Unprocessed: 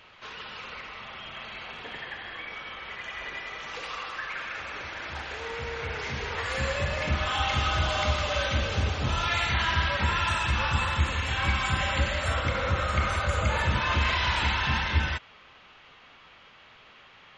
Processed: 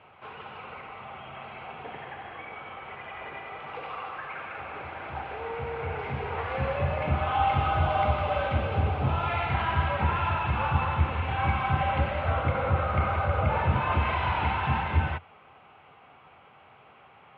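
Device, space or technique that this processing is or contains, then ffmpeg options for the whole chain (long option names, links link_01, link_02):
bass cabinet: -af "highpass=85,equalizer=frequency=85:width_type=q:width=4:gain=7,equalizer=frequency=140:width_type=q:width=4:gain=6,equalizer=frequency=420:width_type=q:width=4:gain=3,equalizer=frequency=770:width_type=q:width=4:gain=9,equalizer=frequency=1800:width_type=q:width=4:gain=-9,lowpass=frequency=2400:width=0.5412,lowpass=frequency=2400:width=1.3066"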